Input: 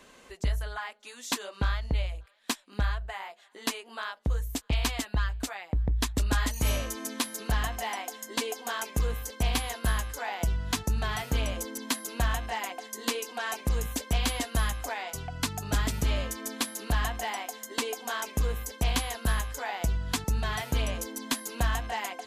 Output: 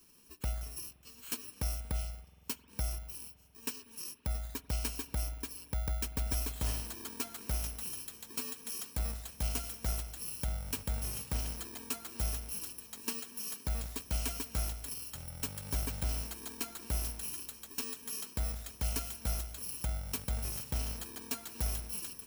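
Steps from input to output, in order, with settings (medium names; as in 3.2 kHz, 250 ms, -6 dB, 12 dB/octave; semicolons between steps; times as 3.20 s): bit-reversed sample order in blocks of 64 samples; spring tank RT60 3.4 s, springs 47 ms, chirp 60 ms, DRR 15 dB; trim -7.5 dB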